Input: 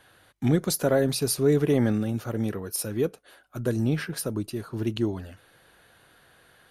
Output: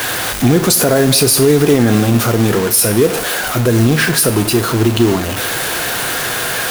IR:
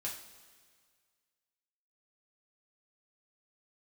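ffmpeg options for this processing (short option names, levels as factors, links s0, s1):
-filter_complex "[0:a]aeval=exprs='val(0)+0.5*0.0316*sgn(val(0))':c=same,lowshelf=f=130:g=-7,acrusher=bits=4:mode=log:mix=0:aa=0.000001,asplit=2[s0][s1];[1:a]atrim=start_sample=2205,highshelf=f=7100:g=7[s2];[s1][s2]afir=irnorm=-1:irlink=0,volume=0.596[s3];[s0][s3]amix=inputs=2:normalize=0,alimiter=level_in=5.01:limit=0.891:release=50:level=0:latency=1,volume=0.891"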